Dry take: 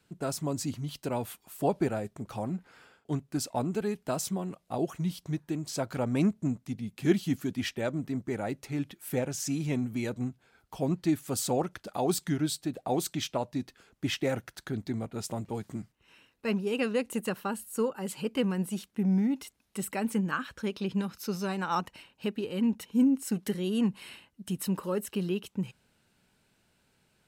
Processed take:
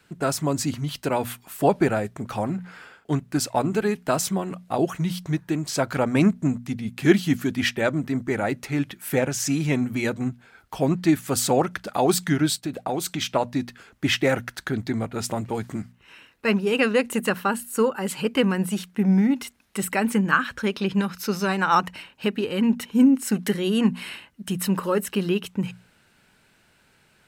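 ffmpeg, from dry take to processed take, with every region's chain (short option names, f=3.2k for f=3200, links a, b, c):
-filter_complex "[0:a]asettb=1/sr,asplit=3[a][b][c];[a]atrim=end=12.564[d];[b]atrim=start=12.56:end=13.28,asetpts=PTS-STARTPTS,afade=t=in:d=0.004:c=qsin,afade=t=out:st=0.716:d=0.004:c=qsin,agate=range=-33dB:threshold=-56dB:ratio=3:release=100:detection=peak,bandreject=f=1.8k:w=13,acompressor=threshold=-31dB:ratio=4:attack=3.2:release=140:knee=1:detection=peak[e];[c]atrim=start=13.276[f];[d][e]acrossfade=d=0.004:c1=hsin:c2=qsin[g];[g][f]acrossfade=d=0.004:c1=qsin:c2=hsin,equalizer=f=1.7k:w=0.95:g=6,bandreject=f=60:t=h:w=6,bandreject=f=120:t=h:w=6,bandreject=f=180:t=h:w=6,bandreject=f=240:t=h:w=6,volume=7.5dB"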